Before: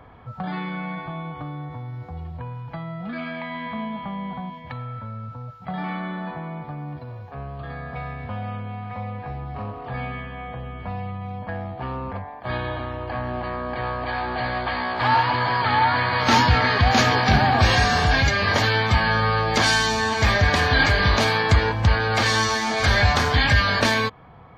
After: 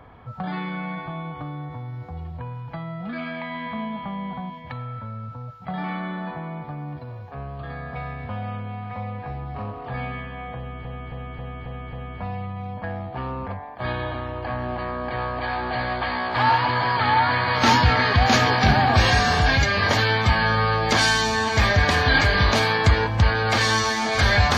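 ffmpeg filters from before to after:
-filter_complex "[0:a]asplit=6[s0][s1][s2][s3][s4][s5];[s0]atrim=end=10.852[s6];[s1]atrim=start=10.578:end=10.852[s7];[s2]atrim=start=10.578:end=10.852[s8];[s3]atrim=start=10.578:end=10.852[s9];[s4]atrim=start=10.578:end=10.852[s10];[s5]atrim=start=10.578[s11];[s6][s7]acrossfade=d=0.004:c1=hsin:c2=hsin[s12];[s12][s8]acrossfade=d=0.004:c1=hsin:c2=hsin[s13];[s13][s9]acrossfade=d=0.004:c1=hsin:c2=hsin[s14];[s14][s10]acrossfade=d=0.004:c1=hsin:c2=hsin[s15];[s15][s11]acrossfade=d=0.004:c1=hsin:c2=hsin"

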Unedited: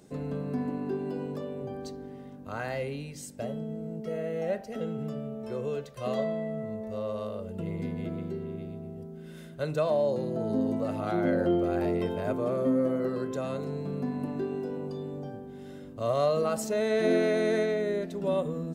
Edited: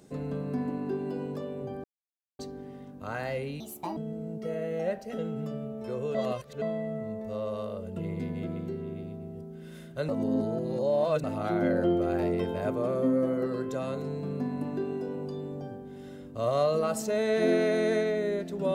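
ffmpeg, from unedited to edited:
-filter_complex "[0:a]asplit=8[s0][s1][s2][s3][s4][s5][s6][s7];[s0]atrim=end=1.84,asetpts=PTS-STARTPTS,afade=t=out:st=1.836:d=0.004:c=hsin,apad=pad_dur=0.55[s8];[s1]atrim=start=1.84:end=3.054,asetpts=PTS-STARTPTS,afade=t=in:d=0.004:c=hsin[s9];[s2]atrim=start=3.05:end=3.59,asetpts=PTS-STARTPTS,asetrate=64827,aresample=44100[s10];[s3]atrim=start=3.586:end=5.772[s11];[s4]atrim=start=5.768:end=6.242,asetpts=PTS-STARTPTS,areverse[s12];[s5]atrim=start=6.238:end=9.712[s13];[s6]atrim=start=9.708:end=10.862,asetpts=PTS-STARTPTS,areverse[s14];[s7]atrim=start=10.858[s15];[s8][s9]concat=n=2:v=0:a=1[s16];[s16][s10]acrossfade=d=0.004:c1=hsin:c2=hsin[s17];[s17][s11]acrossfade=d=0.004:c1=hsin:c2=hsin[s18];[s18][s12]acrossfade=d=0.004:c1=hsin:c2=hsin[s19];[s19][s13]acrossfade=d=0.004:c1=hsin:c2=hsin[s20];[s20][s14]acrossfade=d=0.004:c1=hsin:c2=hsin[s21];[s21][s15]acrossfade=d=0.004:c1=hsin:c2=hsin"

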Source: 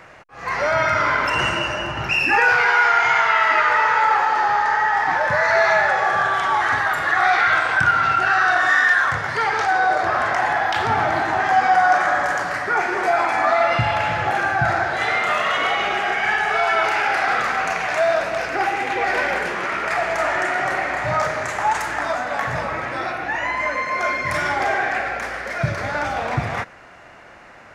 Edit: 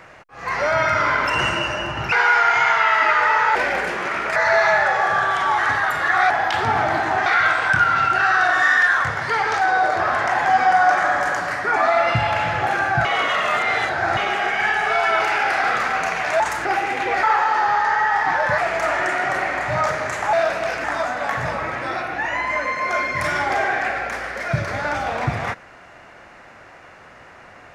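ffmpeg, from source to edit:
-filter_complex "[0:a]asplit=16[s0][s1][s2][s3][s4][s5][s6][s7][s8][s9][s10][s11][s12][s13][s14][s15];[s0]atrim=end=2.122[s16];[s1]atrim=start=2.608:end=4.042[s17];[s2]atrim=start=19.128:end=19.942[s18];[s3]atrim=start=5.388:end=7.332[s19];[s4]atrim=start=10.518:end=11.482[s20];[s5]atrim=start=7.328:end=10.522[s21];[s6]atrim=start=11.478:end=12.792[s22];[s7]atrim=start=13.398:end=14.692[s23];[s8]atrim=start=14.688:end=15.812,asetpts=PTS-STARTPTS,areverse[s24];[s9]atrim=start=15.808:end=18.042[s25];[s10]atrim=start=21.688:end=21.942[s26];[s11]atrim=start=18.548:end=19.132[s27];[s12]atrim=start=4.038:end=5.392[s28];[s13]atrim=start=19.938:end=21.692[s29];[s14]atrim=start=18.038:end=18.552[s30];[s15]atrim=start=21.938[s31];[s16][s17]acrossfade=d=0.004:c1=hsin:c2=hsin[s32];[s32][s18]acrossfade=d=0.004:c1=hsin:c2=hsin[s33];[s33][s19]acrossfade=d=0.004:c1=hsin:c2=hsin[s34];[s34][s20]acrossfade=d=0.004:c1=hsin:c2=hsin[s35];[s35][s21]acrossfade=d=0.004:c1=hsin:c2=hsin[s36];[s36][s22]acrossfade=d=0.004:c1=hsin:c2=hsin[s37];[s37][s23]acrossfade=d=0.004:c1=hsin:c2=hsin[s38];[s38][s24]acrossfade=d=0.004:c1=hsin:c2=hsin[s39];[s39][s25]acrossfade=d=0.004:c1=hsin:c2=hsin[s40];[s40][s26]acrossfade=d=0.004:c1=hsin:c2=hsin[s41];[s41][s27]acrossfade=d=0.004:c1=hsin:c2=hsin[s42];[s42][s28]acrossfade=d=0.004:c1=hsin:c2=hsin[s43];[s43][s29]acrossfade=d=0.004:c1=hsin:c2=hsin[s44];[s44][s30]acrossfade=d=0.004:c1=hsin:c2=hsin[s45];[s45][s31]acrossfade=d=0.004:c1=hsin:c2=hsin"

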